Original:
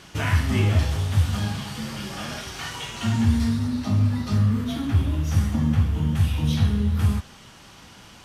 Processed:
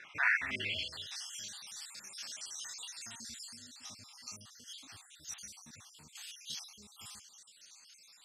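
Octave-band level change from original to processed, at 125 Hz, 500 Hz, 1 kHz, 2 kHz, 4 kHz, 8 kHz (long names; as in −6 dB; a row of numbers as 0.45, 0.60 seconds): −39.5, −22.0, −14.0, −2.0, −7.5, −4.0 decibels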